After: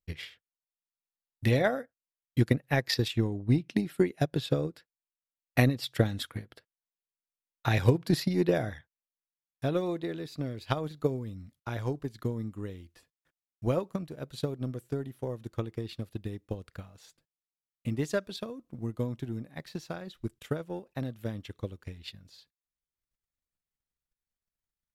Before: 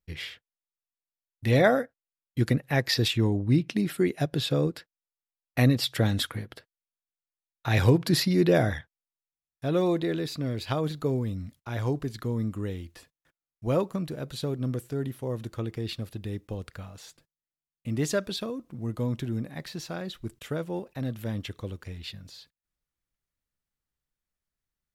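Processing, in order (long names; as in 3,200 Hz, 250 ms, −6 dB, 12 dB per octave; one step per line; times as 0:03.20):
transient designer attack +10 dB, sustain −4 dB
level −7.5 dB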